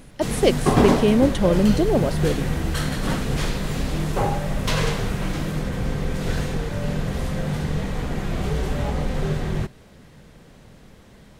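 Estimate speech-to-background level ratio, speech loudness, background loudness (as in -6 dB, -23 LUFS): 4.0 dB, -21.0 LUFS, -25.0 LUFS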